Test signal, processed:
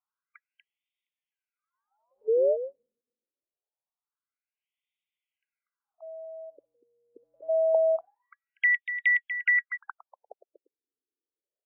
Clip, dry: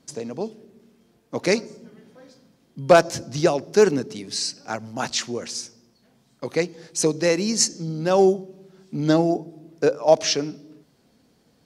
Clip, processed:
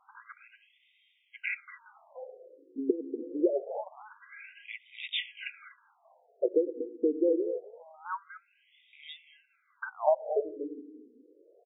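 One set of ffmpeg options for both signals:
-af "acompressor=threshold=-27dB:ratio=20,asuperstop=centerf=1800:order=20:qfactor=7.2,aecho=1:1:241:0.316,afftfilt=real='re*between(b*sr/1024,340*pow(2700/340,0.5+0.5*sin(2*PI*0.25*pts/sr))/1.41,340*pow(2700/340,0.5+0.5*sin(2*PI*0.25*pts/sr))*1.41)':imag='im*between(b*sr/1024,340*pow(2700/340,0.5+0.5*sin(2*PI*0.25*pts/sr))/1.41,340*pow(2700/340,0.5+0.5*sin(2*PI*0.25*pts/sr))*1.41)':win_size=1024:overlap=0.75,volume=7dB"

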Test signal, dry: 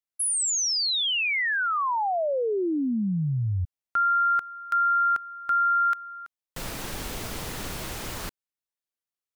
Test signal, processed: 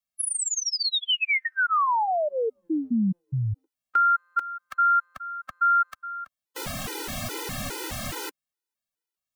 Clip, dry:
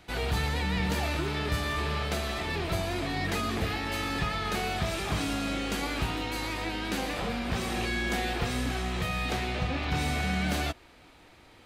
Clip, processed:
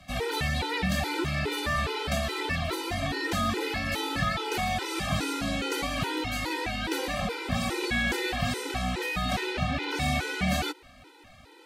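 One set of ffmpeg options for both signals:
-filter_complex "[0:a]acrossover=split=80|200|1300|2800[a][b][c][d][e];[a]acompressor=threshold=-45dB:ratio=4[f];[b]acompressor=threshold=-34dB:ratio=4[g];[c]acompressor=threshold=-30dB:ratio=4[h];[d]acompressor=threshold=-30dB:ratio=4[i];[e]acompressor=threshold=-30dB:ratio=4[j];[f][g][h][i][j]amix=inputs=5:normalize=0,afftfilt=real='re*gt(sin(2*PI*2.4*pts/sr)*(1-2*mod(floor(b*sr/1024/260),2)),0)':imag='im*gt(sin(2*PI*2.4*pts/sr)*(1-2*mod(floor(b*sr/1024/260),2)),0)':win_size=1024:overlap=0.75,volume=5.5dB"

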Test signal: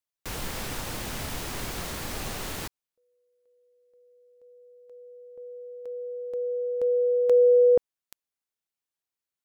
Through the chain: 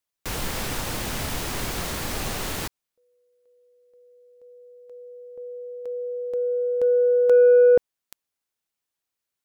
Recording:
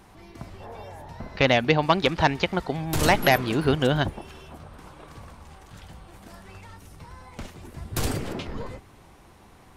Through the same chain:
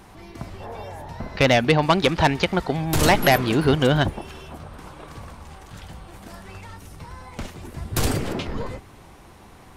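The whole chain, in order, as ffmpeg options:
-af "asoftclip=type=tanh:threshold=-13.5dB,volume=5dB"

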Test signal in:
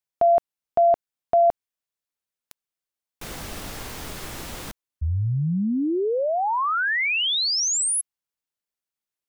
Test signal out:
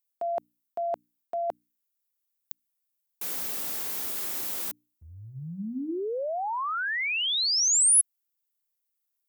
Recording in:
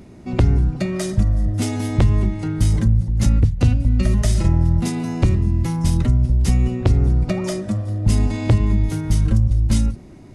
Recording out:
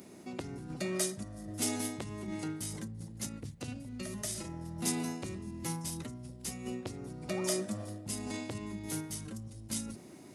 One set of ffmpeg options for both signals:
-af "areverse,acompressor=threshold=-22dB:ratio=6:attack=19:release=207:knee=1:detection=rms,areverse,highpass=210,aemphasis=mode=production:type=50fm,bandreject=f=60:t=h:w=6,bandreject=f=120:t=h:w=6,bandreject=f=180:t=h:w=6,bandreject=f=240:t=h:w=6,bandreject=f=300:t=h:w=6,volume=-6dB"

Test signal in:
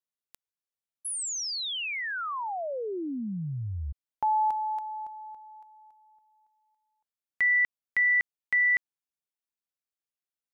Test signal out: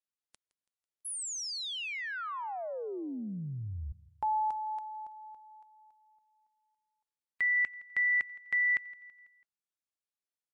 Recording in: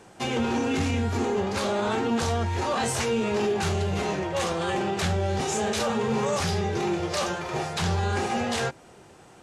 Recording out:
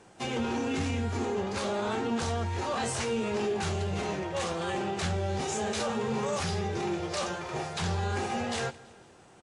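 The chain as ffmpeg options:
-af "aecho=1:1:165|330|495|660:0.0891|0.0463|0.0241|0.0125,volume=-4.5dB" -ar 24000 -c:a libmp3lame -b:a 56k

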